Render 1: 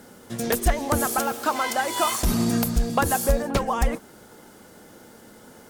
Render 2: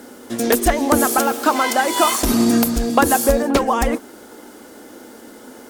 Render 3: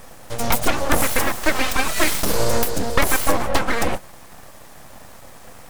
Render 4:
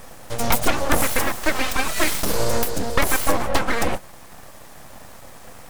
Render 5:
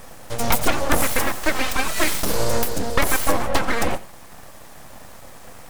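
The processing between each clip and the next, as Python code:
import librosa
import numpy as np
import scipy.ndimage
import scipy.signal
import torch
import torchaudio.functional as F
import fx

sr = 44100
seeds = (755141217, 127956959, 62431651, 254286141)

y1 = fx.low_shelf_res(x, sr, hz=210.0, db=-7.0, q=3.0)
y1 = F.gain(torch.from_numpy(y1), 6.5).numpy()
y2 = np.abs(y1)
y3 = fx.rider(y2, sr, range_db=4, speed_s=2.0)
y3 = F.gain(torch.from_numpy(y3), -1.5).numpy()
y4 = y3 + 10.0 ** (-18.5 / 20.0) * np.pad(y3, (int(87 * sr / 1000.0), 0))[:len(y3)]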